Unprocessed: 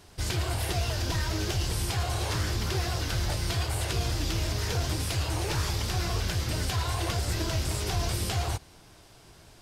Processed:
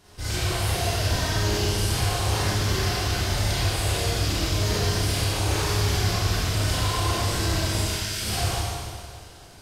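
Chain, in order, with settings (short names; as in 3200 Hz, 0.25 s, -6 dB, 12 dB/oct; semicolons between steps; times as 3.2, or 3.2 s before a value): 7.77–8.22 elliptic high-pass 1400 Hz; Schroeder reverb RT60 2 s, combs from 30 ms, DRR -9 dB; gain -3.5 dB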